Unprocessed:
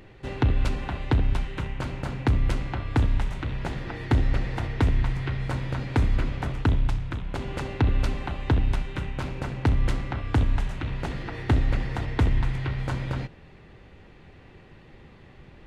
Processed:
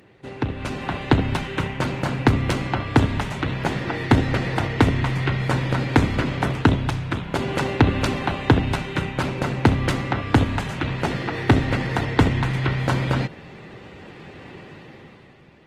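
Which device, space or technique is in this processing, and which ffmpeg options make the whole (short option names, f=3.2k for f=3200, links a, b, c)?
video call: -af "highpass=130,dynaudnorm=f=130:g=13:m=12dB" -ar 48000 -c:a libopus -b:a 20k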